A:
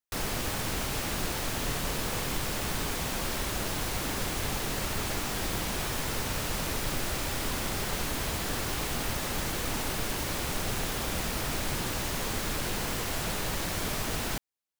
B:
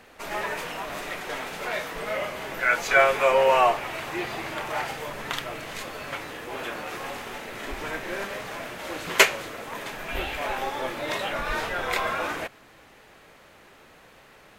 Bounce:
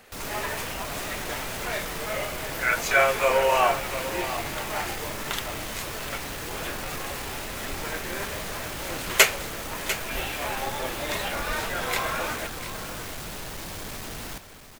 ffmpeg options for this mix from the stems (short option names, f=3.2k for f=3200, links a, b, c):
-filter_complex "[0:a]asoftclip=type=tanh:threshold=-35.5dB,volume=1.5dB,asplit=2[a][b];[b]volume=-11dB[c];[1:a]highshelf=f=6k:g=10.5,flanger=delay=1.4:depth=9.2:regen=-61:speed=1.3:shape=sinusoidal,volume=2dB,asplit=2[d][e];[e]volume=-12dB[f];[c][f]amix=inputs=2:normalize=0,aecho=0:1:697:1[g];[a][d][g]amix=inputs=3:normalize=0"